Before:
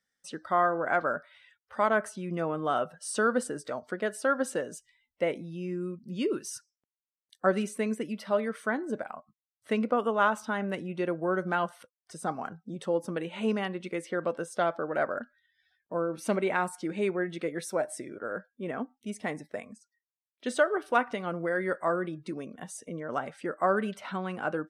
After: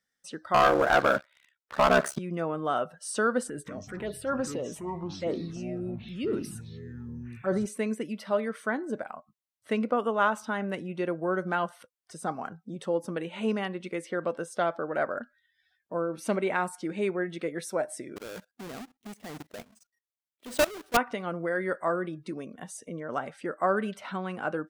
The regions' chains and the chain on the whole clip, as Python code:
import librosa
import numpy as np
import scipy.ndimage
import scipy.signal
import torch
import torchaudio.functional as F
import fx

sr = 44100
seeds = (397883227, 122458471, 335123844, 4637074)

y = fx.chain(x, sr, fx.highpass(hz=43.0, slope=12),
    fx.ring_mod(carrier_hz=34.0),
    fx.leveller(passes=3), at=(0.54, 2.19))
y = fx.chain(y, sr, fx.transient(attack_db=-5, sustain_db=6),
    fx.env_phaser(low_hz=500.0, high_hz=2700.0, full_db=-24.5),
    fx.echo_pitch(ms=179, semitones=-7, count=3, db_per_echo=-6.0), at=(3.48, 7.66))
y = fx.chain(y, sr, fx.halfwave_hold(),
    fx.level_steps(step_db=20), at=(18.16, 20.97))